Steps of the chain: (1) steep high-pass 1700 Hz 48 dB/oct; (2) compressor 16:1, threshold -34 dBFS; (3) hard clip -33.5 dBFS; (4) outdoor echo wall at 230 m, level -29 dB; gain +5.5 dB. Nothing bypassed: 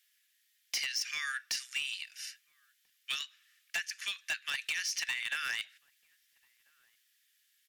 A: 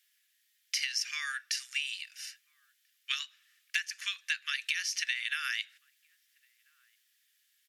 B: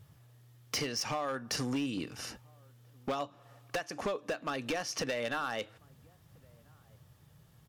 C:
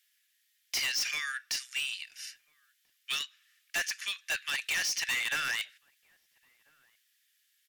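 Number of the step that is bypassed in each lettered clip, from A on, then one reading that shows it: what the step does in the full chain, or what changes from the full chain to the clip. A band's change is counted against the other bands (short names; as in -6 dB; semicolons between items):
3, distortion -11 dB; 1, 500 Hz band +30.0 dB; 2, mean gain reduction 5.5 dB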